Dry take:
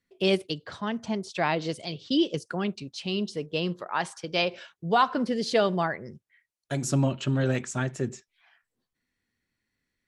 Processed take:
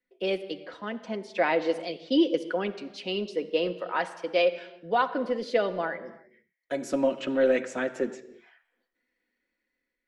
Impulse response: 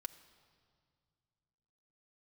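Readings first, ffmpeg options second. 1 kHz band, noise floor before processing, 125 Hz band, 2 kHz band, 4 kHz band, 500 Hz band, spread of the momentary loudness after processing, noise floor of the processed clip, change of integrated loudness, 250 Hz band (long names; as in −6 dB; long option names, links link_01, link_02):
−2.0 dB, −84 dBFS, −16.5 dB, 0.0 dB, −4.0 dB, +3.0 dB, 13 LU, −84 dBFS, 0.0 dB, −1.5 dB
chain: -filter_complex "[0:a]equalizer=frequency=125:width_type=o:width=1:gain=-11,equalizer=frequency=250:width_type=o:width=1:gain=4,equalizer=frequency=500:width_type=o:width=1:gain=11,equalizer=frequency=2000:width_type=o:width=1:gain=7,equalizer=frequency=8000:width_type=o:width=1:gain=-7,acrossover=split=210[link_01][link_02];[link_01]asoftclip=type=hard:threshold=-33dB[link_03];[link_02]dynaudnorm=framelen=430:gausssize=5:maxgain=7.5dB[link_04];[link_03][link_04]amix=inputs=2:normalize=0[link_05];[1:a]atrim=start_sample=2205,afade=type=out:start_time=0.4:duration=0.01,atrim=end_sample=18081[link_06];[link_05][link_06]afir=irnorm=-1:irlink=0,volume=-6dB"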